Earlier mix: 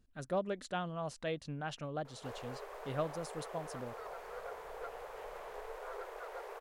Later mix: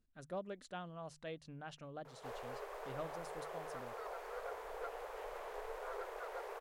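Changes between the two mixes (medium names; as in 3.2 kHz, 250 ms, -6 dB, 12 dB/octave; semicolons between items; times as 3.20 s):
speech -8.5 dB; master: add hum notches 50/100/150 Hz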